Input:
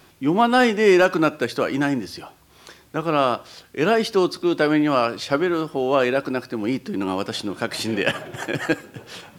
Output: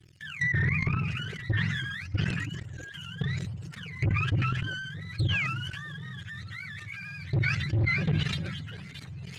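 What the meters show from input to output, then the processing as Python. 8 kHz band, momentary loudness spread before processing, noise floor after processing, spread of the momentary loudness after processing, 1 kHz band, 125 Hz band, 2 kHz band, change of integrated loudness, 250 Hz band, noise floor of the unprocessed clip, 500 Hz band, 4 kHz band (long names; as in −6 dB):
below −10 dB, 12 LU, −44 dBFS, 14 LU, −18.5 dB, +5.5 dB, −5.0 dB, −9.0 dB, −14.5 dB, −53 dBFS, −26.0 dB, −7.0 dB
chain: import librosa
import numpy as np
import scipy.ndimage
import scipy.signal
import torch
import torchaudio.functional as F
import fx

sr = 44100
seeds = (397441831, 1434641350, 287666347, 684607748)

p1 = fx.octave_mirror(x, sr, pivot_hz=680.0)
p2 = scipy.signal.sosfilt(scipy.signal.cheby1(3, 1.0, [140.0, 2000.0], 'bandstop', fs=sr, output='sos'), p1)
p3 = fx.spec_paint(p2, sr, seeds[0], shape='fall', start_s=5.18, length_s=0.29, low_hz=1900.0, high_hz=4400.0, level_db=-32.0)
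p4 = fx.peak_eq(p3, sr, hz=6600.0, db=5.5, octaves=0.4)
p5 = fx.leveller(p4, sr, passes=3)
p6 = fx.level_steps(p5, sr, step_db=18)
p7 = 10.0 ** (-15.5 / 20.0) * np.tanh(p6 / 10.0 ** (-15.5 / 20.0))
p8 = fx.dynamic_eq(p7, sr, hz=3900.0, q=1.8, threshold_db=-43.0, ratio=4.0, max_db=-6)
p9 = fx.env_lowpass_down(p8, sr, base_hz=2100.0, full_db=-19.5)
p10 = p9 + fx.echo_stepped(p9, sr, ms=324, hz=200.0, octaves=1.4, feedback_pct=70, wet_db=-10.0, dry=0)
p11 = fx.sustainer(p10, sr, db_per_s=28.0)
y = p11 * librosa.db_to_amplitude(-4.0)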